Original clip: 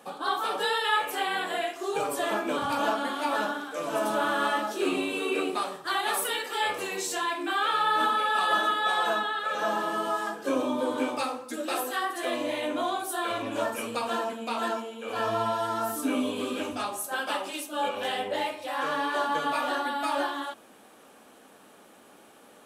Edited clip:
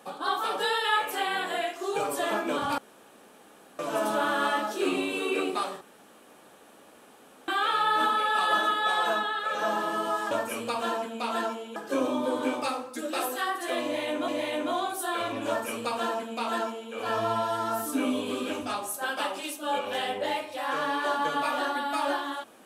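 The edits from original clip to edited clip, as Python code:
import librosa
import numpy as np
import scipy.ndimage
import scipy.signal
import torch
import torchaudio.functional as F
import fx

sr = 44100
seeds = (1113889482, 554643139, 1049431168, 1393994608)

y = fx.edit(x, sr, fx.room_tone_fill(start_s=2.78, length_s=1.01),
    fx.room_tone_fill(start_s=5.81, length_s=1.67),
    fx.repeat(start_s=12.38, length_s=0.45, count=2),
    fx.duplicate(start_s=13.58, length_s=1.45, to_s=10.31), tone=tone)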